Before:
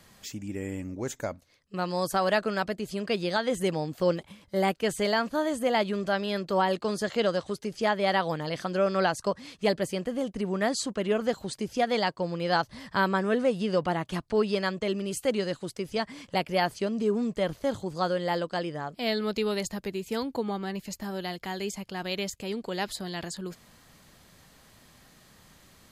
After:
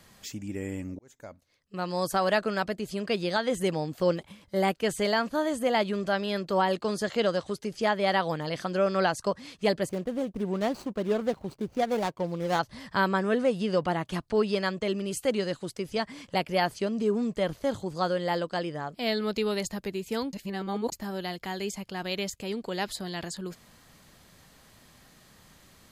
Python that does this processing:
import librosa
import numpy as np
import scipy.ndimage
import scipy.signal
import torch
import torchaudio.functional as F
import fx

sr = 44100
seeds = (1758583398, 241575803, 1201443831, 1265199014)

y = fx.median_filter(x, sr, points=25, at=(9.89, 12.59))
y = fx.edit(y, sr, fx.fade_in_span(start_s=0.99, length_s=1.04),
    fx.reverse_span(start_s=20.33, length_s=0.59), tone=tone)